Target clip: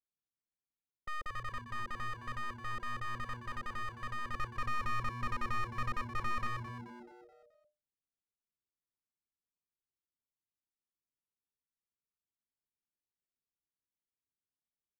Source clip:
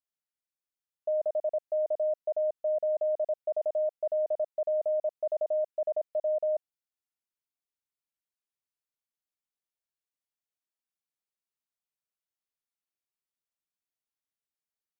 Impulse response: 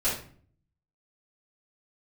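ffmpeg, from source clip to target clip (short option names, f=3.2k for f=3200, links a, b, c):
-filter_complex "[0:a]asettb=1/sr,asplit=3[a][b][c];[a]atrim=end=4.344[d];[b]atrim=start=4.34:end=6.47,asetpts=PTS-STARTPTS,afade=t=in:d=0.004:c=qsin,afade=t=out:st=2.126:d=0.004:c=qsin,lowshelf=f=450:g=9.5[e];[c]atrim=start=6.466[f];[d][e]acrossfade=d=0.004:c1=hsin:c2=qsin[g];[g][f]acrossfade=d=0.004:c1=qsin:c2=hsin,adynamicsmooth=sensitivity=2.5:basefreq=760,aeval=exprs='clip(val(0),-1,0.0211)':c=same,asuperstop=centerf=640:order=4:qfactor=1.4,asplit=6[h][i][j][k][l][m];[i]adelay=215,afreqshift=-120,volume=-10.5dB[n];[j]adelay=430,afreqshift=-240,volume=-16.7dB[o];[k]adelay=645,afreqshift=-360,volume=-22.9dB[p];[l]adelay=860,afreqshift=-480,volume=-29.1dB[q];[m]adelay=1075,afreqshift=-600,volume=-35.3dB[r];[h][n][o][p][q][r]amix=inputs=6:normalize=0,volume=1.5dB"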